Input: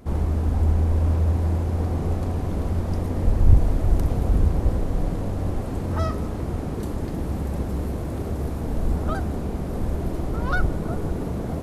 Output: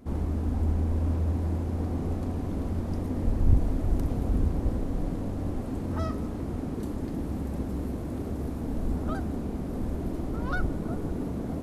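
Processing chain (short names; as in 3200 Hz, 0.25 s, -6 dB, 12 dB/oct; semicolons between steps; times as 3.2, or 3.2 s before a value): bell 260 Hz +7.5 dB 0.7 oct; gain -7 dB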